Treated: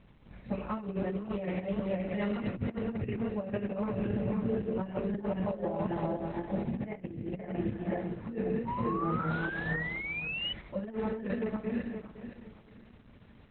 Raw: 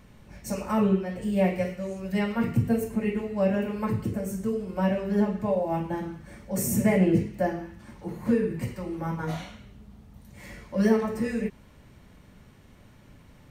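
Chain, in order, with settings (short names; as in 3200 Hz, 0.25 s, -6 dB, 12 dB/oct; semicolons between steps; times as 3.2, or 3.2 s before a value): regenerating reverse delay 0.257 s, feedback 54%, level -1.5 dB; painted sound rise, 8.65–10.53, 920–3000 Hz -32 dBFS; negative-ratio compressor -25 dBFS, ratio -0.5; gain -6 dB; Opus 8 kbps 48000 Hz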